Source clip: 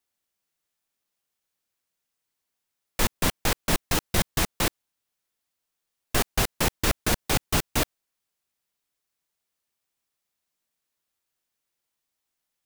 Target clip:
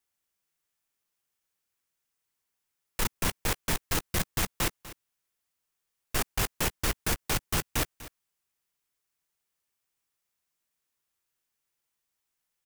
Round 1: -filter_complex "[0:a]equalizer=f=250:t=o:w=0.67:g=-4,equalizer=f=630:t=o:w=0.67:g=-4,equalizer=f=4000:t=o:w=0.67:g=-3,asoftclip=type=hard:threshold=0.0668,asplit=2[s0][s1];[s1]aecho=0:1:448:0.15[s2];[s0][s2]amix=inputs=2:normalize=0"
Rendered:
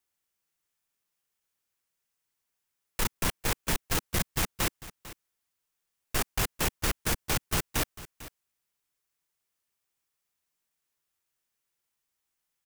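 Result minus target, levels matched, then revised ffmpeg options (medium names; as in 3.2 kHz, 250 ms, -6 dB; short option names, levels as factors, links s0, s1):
echo 202 ms late
-filter_complex "[0:a]equalizer=f=250:t=o:w=0.67:g=-4,equalizer=f=630:t=o:w=0.67:g=-4,equalizer=f=4000:t=o:w=0.67:g=-3,asoftclip=type=hard:threshold=0.0668,asplit=2[s0][s1];[s1]aecho=0:1:246:0.15[s2];[s0][s2]amix=inputs=2:normalize=0"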